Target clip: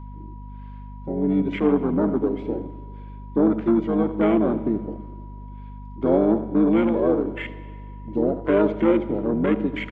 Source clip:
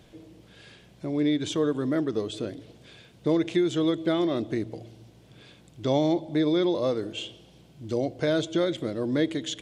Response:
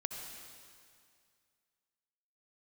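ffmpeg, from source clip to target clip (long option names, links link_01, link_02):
-filter_complex "[0:a]aeval=exprs='0.282*(cos(1*acos(clip(val(0)/0.282,-1,1)))-cos(1*PI/2))+0.0282*(cos(5*acos(clip(val(0)/0.282,-1,1)))-cos(5*PI/2))':channel_layout=same,asplit=2[link_01][link_02];[link_02]asetrate=29433,aresample=44100,atempo=1.49831,volume=0dB[link_03];[link_01][link_03]amix=inputs=2:normalize=0,highpass=260,lowpass=2400,aecho=1:1:80:0.237,afwtdn=0.0251,asetrate=42777,aresample=44100,aeval=exprs='val(0)+0.0126*(sin(2*PI*50*n/s)+sin(2*PI*2*50*n/s)/2+sin(2*PI*3*50*n/s)/3+sin(2*PI*4*50*n/s)/4+sin(2*PI*5*50*n/s)/5)':channel_layout=same,asplit=2[link_04][link_05];[1:a]atrim=start_sample=2205,asetrate=52920,aresample=44100[link_06];[link_05][link_06]afir=irnorm=-1:irlink=0,volume=-8.5dB[link_07];[link_04][link_07]amix=inputs=2:normalize=0,aeval=exprs='val(0)+0.00447*sin(2*PI*970*n/s)':channel_layout=same"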